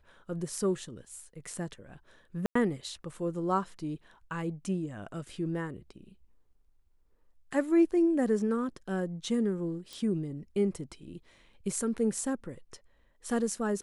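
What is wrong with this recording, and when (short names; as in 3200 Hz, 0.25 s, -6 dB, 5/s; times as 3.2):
2.46–2.55 gap 94 ms
9.93 pop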